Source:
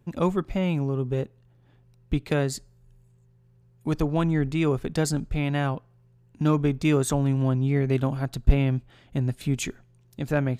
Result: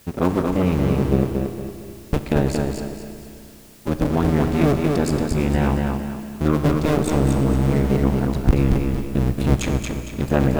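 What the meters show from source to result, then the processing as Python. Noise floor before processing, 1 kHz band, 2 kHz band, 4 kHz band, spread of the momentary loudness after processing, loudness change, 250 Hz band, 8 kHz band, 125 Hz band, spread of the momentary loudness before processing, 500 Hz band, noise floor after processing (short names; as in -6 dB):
-59 dBFS, +6.5 dB, +3.5 dB, +3.5 dB, 10 LU, +5.0 dB, +6.5 dB, +1.5 dB, +4.5 dB, 8 LU, +6.0 dB, -41 dBFS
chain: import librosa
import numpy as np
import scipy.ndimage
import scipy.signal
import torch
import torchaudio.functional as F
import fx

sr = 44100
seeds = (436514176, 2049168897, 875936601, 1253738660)

p1 = fx.cycle_switch(x, sr, every=2, mode='muted')
p2 = fx.high_shelf(p1, sr, hz=2100.0, db=-8.0)
p3 = fx.rider(p2, sr, range_db=10, speed_s=2.0)
p4 = 10.0 ** (-14.5 / 20.0) * np.tanh(p3 / 10.0 ** (-14.5 / 20.0))
p5 = fx.quant_dither(p4, sr, seeds[0], bits=10, dither='triangular')
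p6 = p5 + fx.echo_feedback(p5, sr, ms=229, feedback_pct=35, wet_db=-4.0, dry=0)
p7 = fx.rev_schroeder(p6, sr, rt60_s=2.8, comb_ms=29, drr_db=9.0)
y = F.gain(torch.from_numpy(p7), 8.0).numpy()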